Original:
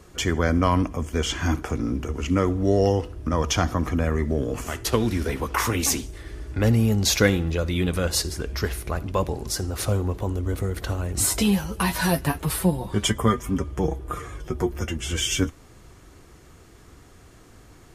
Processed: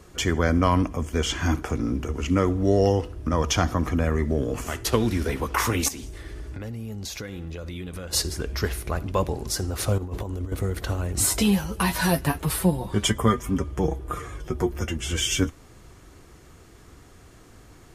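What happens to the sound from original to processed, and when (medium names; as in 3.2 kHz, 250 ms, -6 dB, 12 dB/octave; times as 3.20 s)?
5.88–8.13 s: compression 10:1, threshold -31 dBFS
9.98–10.52 s: compressor with a negative ratio -29 dBFS, ratio -0.5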